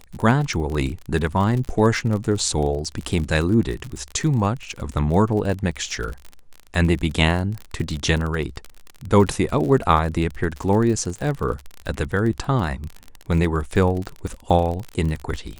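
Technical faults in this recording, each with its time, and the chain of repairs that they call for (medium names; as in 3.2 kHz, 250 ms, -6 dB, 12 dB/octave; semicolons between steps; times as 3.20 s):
crackle 35 per s -26 dBFS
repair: de-click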